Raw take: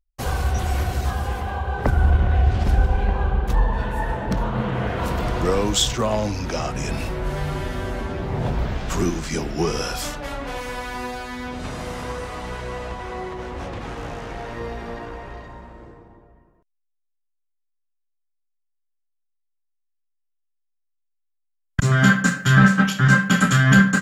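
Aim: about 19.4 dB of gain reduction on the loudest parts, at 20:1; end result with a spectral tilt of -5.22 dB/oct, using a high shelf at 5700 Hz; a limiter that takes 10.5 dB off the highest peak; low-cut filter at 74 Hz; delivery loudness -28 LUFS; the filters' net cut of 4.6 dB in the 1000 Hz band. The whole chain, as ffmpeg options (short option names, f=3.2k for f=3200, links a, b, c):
-af "highpass=74,equalizer=f=1k:t=o:g=-6,highshelf=f=5.7k:g=-8.5,acompressor=threshold=-29dB:ratio=20,volume=7.5dB,alimiter=limit=-18.5dB:level=0:latency=1"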